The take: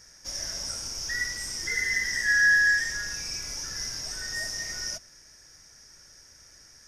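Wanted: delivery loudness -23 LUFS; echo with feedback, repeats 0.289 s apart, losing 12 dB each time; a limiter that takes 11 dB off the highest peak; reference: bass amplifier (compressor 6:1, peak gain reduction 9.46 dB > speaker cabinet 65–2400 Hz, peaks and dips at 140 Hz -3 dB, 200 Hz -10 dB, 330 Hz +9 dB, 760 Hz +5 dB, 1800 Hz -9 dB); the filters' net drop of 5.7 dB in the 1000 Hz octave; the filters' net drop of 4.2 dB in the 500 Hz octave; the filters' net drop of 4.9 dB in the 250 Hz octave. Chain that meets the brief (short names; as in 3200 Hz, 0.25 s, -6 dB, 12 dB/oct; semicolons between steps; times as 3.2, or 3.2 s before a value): bell 250 Hz -8 dB; bell 500 Hz -3.5 dB; bell 1000 Hz -8 dB; limiter -25.5 dBFS; feedback echo 0.289 s, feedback 25%, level -12 dB; compressor 6:1, threshold -38 dBFS; speaker cabinet 65–2400 Hz, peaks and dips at 140 Hz -3 dB, 200 Hz -10 dB, 330 Hz +9 dB, 760 Hz +5 dB, 1800 Hz -9 dB; gain +27 dB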